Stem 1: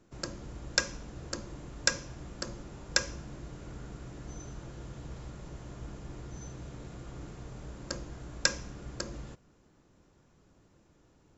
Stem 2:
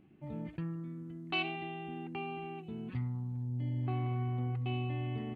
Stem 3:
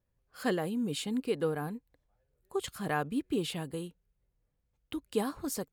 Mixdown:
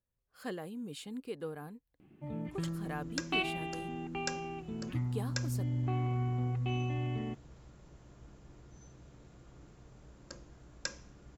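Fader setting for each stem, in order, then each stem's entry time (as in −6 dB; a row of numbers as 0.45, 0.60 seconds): −11.5, +1.5, −9.5 decibels; 2.40, 2.00, 0.00 seconds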